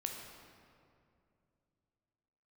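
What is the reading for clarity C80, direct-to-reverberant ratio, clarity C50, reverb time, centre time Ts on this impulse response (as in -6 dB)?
4.5 dB, 1.5 dB, 3.0 dB, 2.5 s, 70 ms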